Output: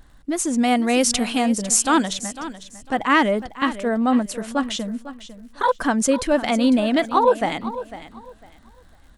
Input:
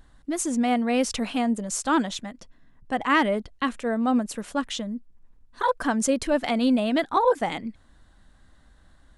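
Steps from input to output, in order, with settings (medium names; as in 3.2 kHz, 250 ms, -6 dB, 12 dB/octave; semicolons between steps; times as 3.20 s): 0.58–2.13 s: treble shelf 4.3 kHz +10.5 dB; crackle 75 per s -50 dBFS; on a send: feedback delay 501 ms, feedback 24%, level -14 dB; on the sum: trim +4 dB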